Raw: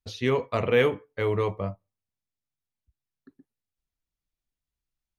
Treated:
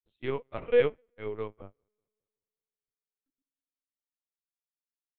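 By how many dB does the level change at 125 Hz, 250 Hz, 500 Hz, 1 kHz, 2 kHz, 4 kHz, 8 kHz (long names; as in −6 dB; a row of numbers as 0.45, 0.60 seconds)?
−13.5 dB, −10.5 dB, −3.5 dB, −11.0 dB, −8.5 dB, −10.5 dB, can't be measured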